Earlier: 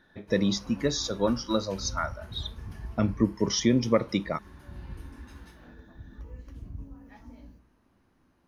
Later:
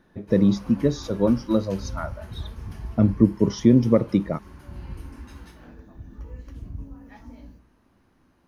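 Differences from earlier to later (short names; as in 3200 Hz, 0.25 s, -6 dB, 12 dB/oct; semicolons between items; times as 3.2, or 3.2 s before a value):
speech: add tilt shelf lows +9 dB, about 850 Hz; background +4.5 dB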